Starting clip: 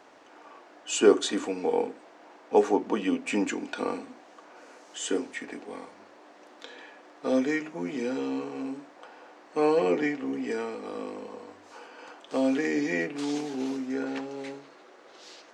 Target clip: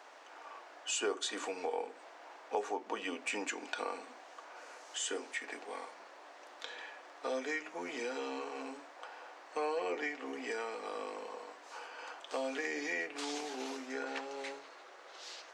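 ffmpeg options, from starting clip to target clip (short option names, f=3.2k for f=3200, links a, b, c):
-af "highpass=610,acompressor=threshold=-37dB:ratio=2.5,volume=1dB"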